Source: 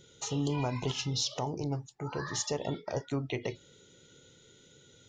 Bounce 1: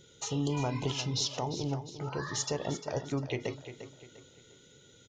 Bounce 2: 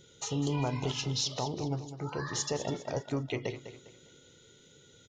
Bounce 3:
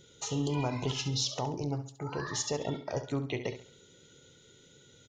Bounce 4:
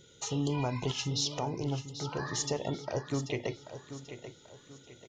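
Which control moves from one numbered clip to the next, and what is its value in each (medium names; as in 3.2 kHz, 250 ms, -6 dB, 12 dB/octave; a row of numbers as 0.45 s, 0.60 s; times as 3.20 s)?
feedback delay, time: 350 ms, 202 ms, 68 ms, 787 ms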